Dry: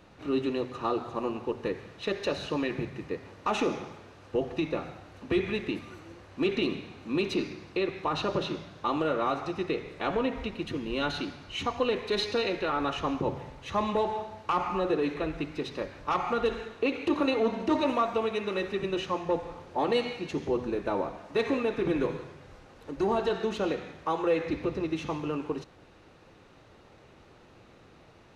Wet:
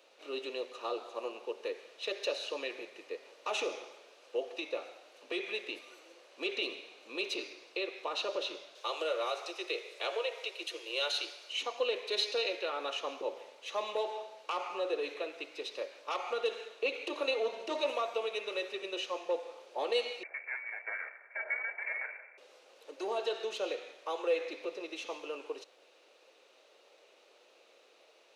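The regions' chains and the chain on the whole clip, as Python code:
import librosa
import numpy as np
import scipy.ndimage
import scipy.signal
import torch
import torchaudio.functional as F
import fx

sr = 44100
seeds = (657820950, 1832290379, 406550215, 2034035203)

y = fx.chain(x, sr, fx.cheby1_highpass(hz=320.0, order=8),
    fx.high_shelf(hz=3600.0, db=9.0), at=(8.75, 11.53))
y = fx.chain(y, sr, fx.lower_of_two(delay_ms=1.1),
    fx.highpass(hz=180.0, slope=24),
    fx.freq_invert(carrier_hz=2500), at=(20.23, 22.38))
y = scipy.signal.sosfilt(scipy.signal.butter(4, 510.0, 'highpass', fs=sr, output='sos'), y)
y = fx.band_shelf(y, sr, hz=1200.0, db=-9.0, octaves=1.7)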